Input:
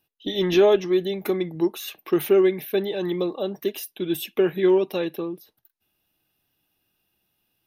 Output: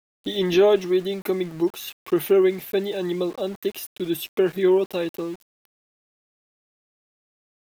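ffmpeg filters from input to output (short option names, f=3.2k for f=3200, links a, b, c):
-af "aeval=exprs='val(0)*gte(abs(val(0)),0.0112)':c=same"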